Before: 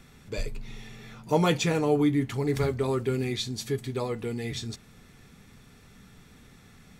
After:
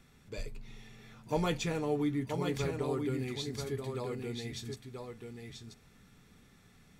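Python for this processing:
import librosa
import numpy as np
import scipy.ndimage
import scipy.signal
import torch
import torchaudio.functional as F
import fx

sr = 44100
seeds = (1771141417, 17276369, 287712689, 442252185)

y = x + 10.0 ** (-5.5 / 20.0) * np.pad(x, (int(983 * sr / 1000.0), 0))[:len(x)]
y = y * 10.0 ** (-8.5 / 20.0)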